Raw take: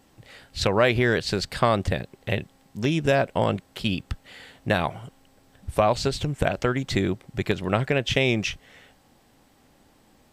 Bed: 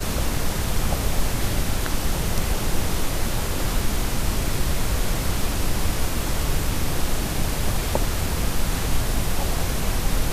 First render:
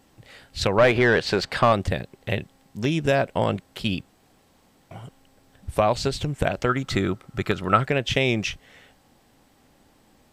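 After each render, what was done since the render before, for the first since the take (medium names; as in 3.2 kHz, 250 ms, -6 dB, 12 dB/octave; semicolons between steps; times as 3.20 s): 0.78–1.73 s: overdrive pedal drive 17 dB, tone 1.5 kHz, clips at -6 dBFS; 4.08–4.91 s: room tone; 6.69–7.84 s: peaking EQ 1.3 kHz +14 dB 0.26 oct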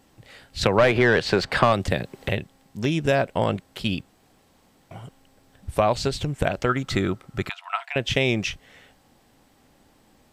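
0.63–2.29 s: three bands compressed up and down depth 70%; 7.49–7.96 s: rippled Chebyshev high-pass 670 Hz, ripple 9 dB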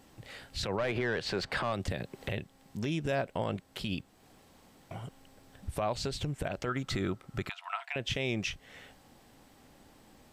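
compression 1.5:1, threshold -42 dBFS, peak gain reduction 10.5 dB; peak limiter -22 dBFS, peak gain reduction 11 dB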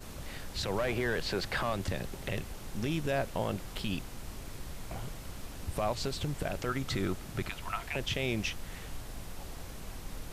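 add bed -20 dB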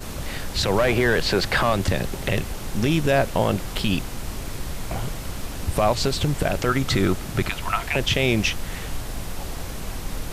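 trim +12 dB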